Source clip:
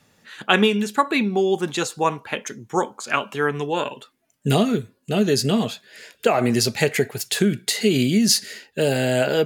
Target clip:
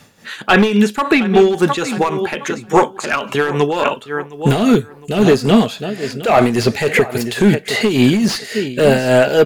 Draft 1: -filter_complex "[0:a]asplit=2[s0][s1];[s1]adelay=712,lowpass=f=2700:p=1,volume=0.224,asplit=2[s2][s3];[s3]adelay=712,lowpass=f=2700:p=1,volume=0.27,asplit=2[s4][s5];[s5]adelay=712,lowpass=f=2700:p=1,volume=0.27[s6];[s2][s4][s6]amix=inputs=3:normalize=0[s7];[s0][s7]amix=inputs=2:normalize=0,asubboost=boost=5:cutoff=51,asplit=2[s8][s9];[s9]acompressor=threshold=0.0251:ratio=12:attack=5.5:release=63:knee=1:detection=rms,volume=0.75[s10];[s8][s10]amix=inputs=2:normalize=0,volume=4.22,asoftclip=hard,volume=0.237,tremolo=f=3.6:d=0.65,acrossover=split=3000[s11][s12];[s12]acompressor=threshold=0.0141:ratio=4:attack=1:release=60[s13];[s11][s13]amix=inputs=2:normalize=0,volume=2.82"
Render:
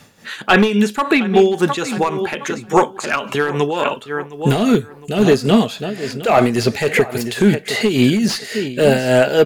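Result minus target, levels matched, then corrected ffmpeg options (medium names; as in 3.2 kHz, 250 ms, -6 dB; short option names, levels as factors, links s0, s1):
compression: peak gain reduction +10 dB
-filter_complex "[0:a]asplit=2[s0][s1];[s1]adelay=712,lowpass=f=2700:p=1,volume=0.224,asplit=2[s2][s3];[s3]adelay=712,lowpass=f=2700:p=1,volume=0.27,asplit=2[s4][s5];[s5]adelay=712,lowpass=f=2700:p=1,volume=0.27[s6];[s2][s4][s6]amix=inputs=3:normalize=0[s7];[s0][s7]amix=inputs=2:normalize=0,asubboost=boost=5:cutoff=51,asplit=2[s8][s9];[s9]acompressor=threshold=0.0891:ratio=12:attack=5.5:release=63:knee=1:detection=rms,volume=0.75[s10];[s8][s10]amix=inputs=2:normalize=0,volume=4.22,asoftclip=hard,volume=0.237,tremolo=f=3.6:d=0.65,acrossover=split=3000[s11][s12];[s12]acompressor=threshold=0.0141:ratio=4:attack=1:release=60[s13];[s11][s13]amix=inputs=2:normalize=0,volume=2.82"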